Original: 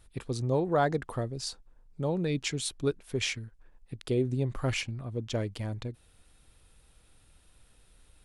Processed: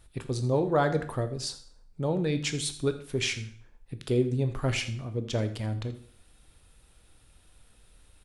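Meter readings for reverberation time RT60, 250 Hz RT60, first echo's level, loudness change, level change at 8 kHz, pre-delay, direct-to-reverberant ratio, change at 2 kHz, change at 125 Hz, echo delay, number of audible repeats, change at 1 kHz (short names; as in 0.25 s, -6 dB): 0.55 s, 0.50 s, -17.5 dB, +2.0 dB, +2.0 dB, 7 ms, 9.0 dB, +2.0 dB, +2.5 dB, 82 ms, 1, +1.0 dB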